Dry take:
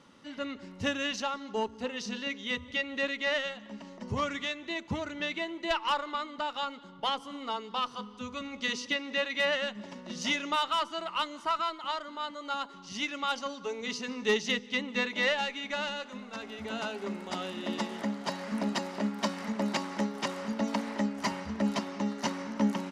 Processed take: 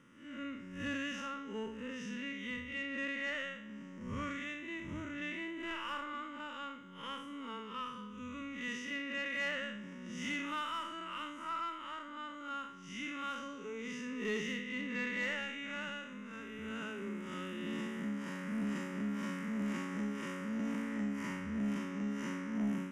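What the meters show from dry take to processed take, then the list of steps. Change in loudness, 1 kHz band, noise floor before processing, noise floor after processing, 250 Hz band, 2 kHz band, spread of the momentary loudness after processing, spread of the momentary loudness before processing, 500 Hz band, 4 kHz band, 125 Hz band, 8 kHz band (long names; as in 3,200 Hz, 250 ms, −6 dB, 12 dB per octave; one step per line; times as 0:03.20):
−7.0 dB, −10.0 dB, −49 dBFS, −49 dBFS, −4.0 dB, −5.5 dB, 8 LU, 9 LU, −11.0 dB, −12.0 dB, −4.0 dB, −10.0 dB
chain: spectrum smeared in time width 142 ms
phaser with its sweep stopped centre 1,800 Hz, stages 4
soft clipping −28 dBFS, distortion −21 dB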